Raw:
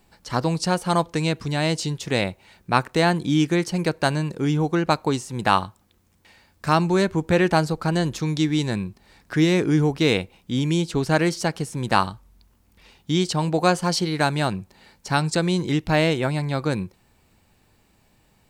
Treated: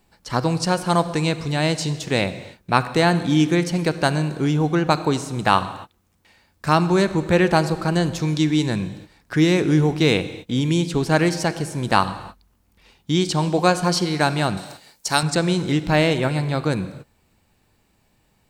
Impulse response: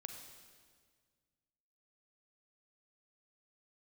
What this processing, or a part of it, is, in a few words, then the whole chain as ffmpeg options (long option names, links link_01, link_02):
keyed gated reverb: -filter_complex "[0:a]asplit=3[link_01][link_02][link_03];[1:a]atrim=start_sample=2205[link_04];[link_02][link_04]afir=irnorm=-1:irlink=0[link_05];[link_03]apad=whole_len=815459[link_06];[link_05][link_06]sidechaingate=range=-33dB:threshold=-48dB:ratio=16:detection=peak,volume=1dB[link_07];[link_01][link_07]amix=inputs=2:normalize=0,asettb=1/sr,asplit=3[link_08][link_09][link_10];[link_08]atrim=end=14.574[link_11];[link_09]atrim=start=14.57:end=15.23,asetpts=PTS-STARTPTS,afade=type=in:duration=0.004:curve=qsin,afade=type=out:start_time=0.656:duration=0.004:curve=qsin,bass=frequency=250:gain=-9,treble=frequency=4000:gain=12[link_12];[link_10]atrim=start=15.226[link_13];[link_11][link_12]acrossfade=duration=0.004:curve1=hsin:curve2=qsin[link_14];[link_14][link_13]acrossfade=duration=0.004:curve1=qsin:curve2=hsin,volume=-2.5dB"